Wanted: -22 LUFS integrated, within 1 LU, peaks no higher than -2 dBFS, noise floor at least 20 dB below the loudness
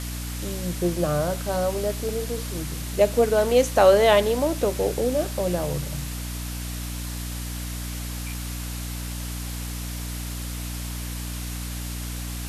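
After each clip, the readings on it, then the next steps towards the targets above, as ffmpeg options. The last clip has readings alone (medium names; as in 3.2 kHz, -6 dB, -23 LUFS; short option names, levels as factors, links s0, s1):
hum 60 Hz; highest harmonic 300 Hz; hum level -30 dBFS; noise floor -32 dBFS; noise floor target -46 dBFS; loudness -25.5 LUFS; peak level -4.5 dBFS; loudness target -22.0 LUFS
-> -af "bandreject=f=60:t=h:w=4,bandreject=f=120:t=h:w=4,bandreject=f=180:t=h:w=4,bandreject=f=240:t=h:w=4,bandreject=f=300:t=h:w=4"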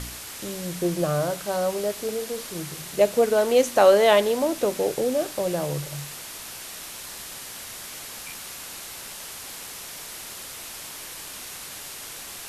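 hum not found; noise floor -39 dBFS; noise floor target -46 dBFS
-> -af "afftdn=nr=7:nf=-39"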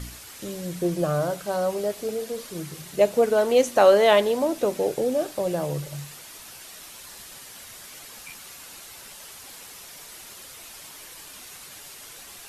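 noise floor -44 dBFS; loudness -23.5 LUFS; peak level -4.0 dBFS; loudness target -22.0 LUFS
-> -af "volume=1.19"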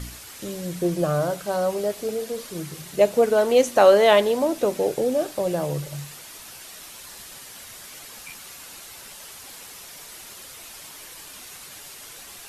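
loudness -22.0 LUFS; peak level -2.5 dBFS; noise floor -42 dBFS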